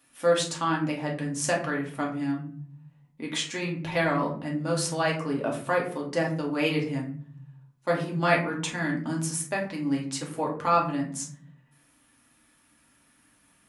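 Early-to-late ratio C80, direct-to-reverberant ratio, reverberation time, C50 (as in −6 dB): 12.5 dB, −2.5 dB, 0.55 s, 8.0 dB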